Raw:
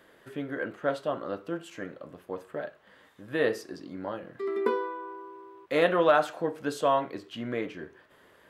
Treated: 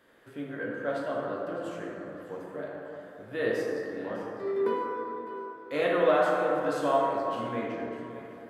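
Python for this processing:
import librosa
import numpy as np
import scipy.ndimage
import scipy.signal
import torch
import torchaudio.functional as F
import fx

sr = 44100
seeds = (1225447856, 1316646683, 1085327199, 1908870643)

y = fx.echo_feedback(x, sr, ms=605, feedback_pct=31, wet_db=-14.5)
y = fx.rev_plate(y, sr, seeds[0], rt60_s=2.9, hf_ratio=0.35, predelay_ms=0, drr_db=-4.0)
y = y * 10.0 ** (-6.5 / 20.0)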